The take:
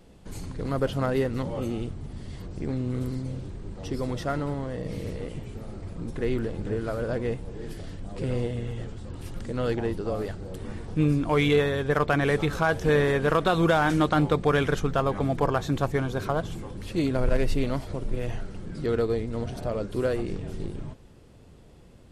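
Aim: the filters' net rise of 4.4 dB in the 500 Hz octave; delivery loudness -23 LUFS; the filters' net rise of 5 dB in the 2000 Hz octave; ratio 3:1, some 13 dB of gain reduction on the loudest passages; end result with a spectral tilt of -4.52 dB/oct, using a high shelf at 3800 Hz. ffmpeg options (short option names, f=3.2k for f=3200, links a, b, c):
-af "equalizer=f=500:t=o:g=5,equalizer=f=2k:t=o:g=8,highshelf=f=3.8k:g=-7.5,acompressor=threshold=-32dB:ratio=3,volume=11.5dB"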